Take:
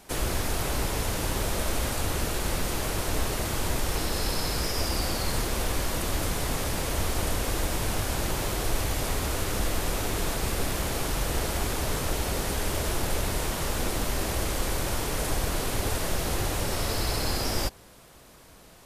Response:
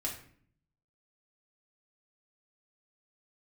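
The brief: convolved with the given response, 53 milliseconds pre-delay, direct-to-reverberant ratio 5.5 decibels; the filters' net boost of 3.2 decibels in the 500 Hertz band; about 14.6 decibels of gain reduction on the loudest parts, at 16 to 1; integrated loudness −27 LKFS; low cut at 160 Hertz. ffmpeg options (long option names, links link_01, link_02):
-filter_complex "[0:a]highpass=160,equalizer=frequency=500:width_type=o:gain=4,acompressor=threshold=-41dB:ratio=16,asplit=2[link_01][link_02];[1:a]atrim=start_sample=2205,adelay=53[link_03];[link_02][link_03]afir=irnorm=-1:irlink=0,volume=-7.5dB[link_04];[link_01][link_04]amix=inputs=2:normalize=0,volume=15.5dB"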